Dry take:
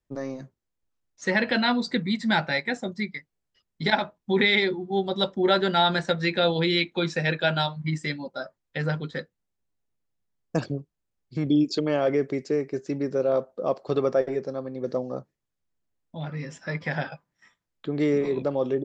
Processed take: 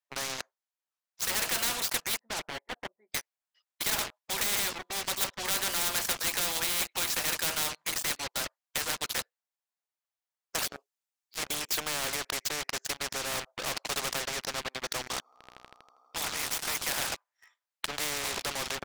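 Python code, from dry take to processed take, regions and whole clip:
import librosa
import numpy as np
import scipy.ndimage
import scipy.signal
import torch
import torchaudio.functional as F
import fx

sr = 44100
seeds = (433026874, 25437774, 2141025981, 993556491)

y = fx.chain(x, sr, fx.bessel_lowpass(hz=520.0, order=4),
    fx.upward_expand(threshold_db=-38.0, expansion=1.5), at=(2.19, 3.12))
y = fx.chain(y, sr, fx.highpass(hz=250.0, slope=24),
    fx.high_shelf(hz=3400.0, db=8.5),
    fx.ensemble(), at=(10.63, 11.43))
y = fx.chain(y, sr, fx.comb(ms=0.9, depth=0.87),
    fx.echo_swell(ms=80, loudest=5, wet_db=-18), at=(15.01, 16.82))
y = scipy.signal.sosfilt(scipy.signal.butter(4, 670.0, 'highpass', fs=sr, output='sos'), y)
y = fx.leveller(y, sr, passes=5)
y = fx.spectral_comp(y, sr, ratio=4.0)
y = y * 10.0 ** (-3.0 / 20.0)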